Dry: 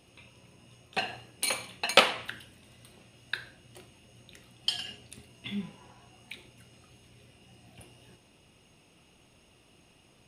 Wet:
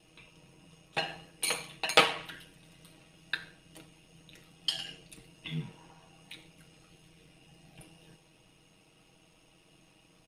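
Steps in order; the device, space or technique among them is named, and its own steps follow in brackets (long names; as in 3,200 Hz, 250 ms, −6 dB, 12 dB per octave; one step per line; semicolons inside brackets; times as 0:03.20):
ring-modulated robot voice (ring modulation 44 Hz; comb filter 6.3 ms)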